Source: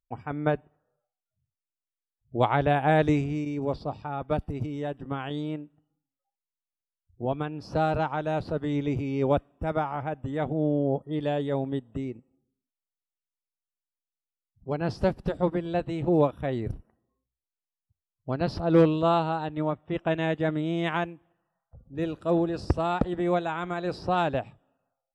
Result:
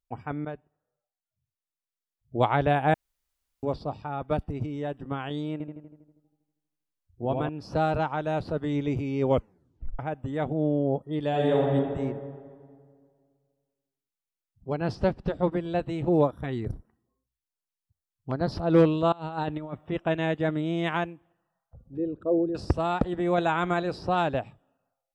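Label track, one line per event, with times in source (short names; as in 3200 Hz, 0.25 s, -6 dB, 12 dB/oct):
0.450000	2.360000	fade in linear, from -12.5 dB
2.940000	3.630000	room tone
4.430000	4.900000	high shelf 6600 Hz -7 dB
5.520000	7.490000	darkening echo 80 ms, feedback 62%, low-pass 2600 Hz, level -4 dB
9.280000	9.280000	tape stop 0.71 s
11.290000	11.740000	reverb throw, RT60 2 s, DRR -4 dB
14.950000	15.520000	LPF 5400 Hz
16.230000	18.520000	LFO notch square 2.4 Hz 590–2700 Hz
19.120000	19.920000	negative-ratio compressor -32 dBFS, ratio -0.5
21.970000	22.550000	formant sharpening exponent 2
23.380000	23.830000	gain +5.5 dB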